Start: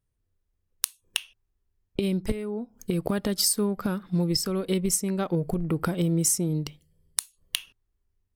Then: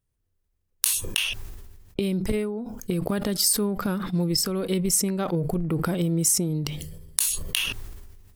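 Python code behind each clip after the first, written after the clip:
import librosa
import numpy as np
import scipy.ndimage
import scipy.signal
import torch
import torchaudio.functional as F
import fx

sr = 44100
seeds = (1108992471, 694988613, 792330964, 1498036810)

y = fx.high_shelf(x, sr, hz=8800.0, db=4.0)
y = fx.sustainer(y, sr, db_per_s=38.0)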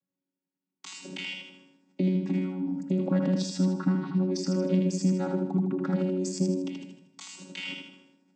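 y = fx.chord_vocoder(x, sr, chord='bare fifth', root=54)
y = fx.echo_feedback(y, sr, ms=79, feedback_pct=44, wet_db=-4.0)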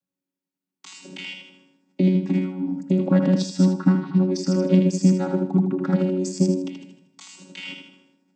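y = fx.upward_expand(x, sr, threshold_db=-38.0, expansion=1.5)
y = F.gain(torch.from_numpy(y), 9.0).numpy()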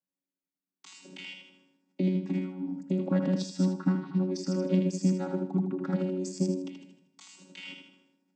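y = scipy.signal.sosfilt(scipy.signal.butter(2, 130.0, 'highpass', fs=sr, output='sos'), x)
y = F.gain(torch.from_numpy(y), -8.0).numpy()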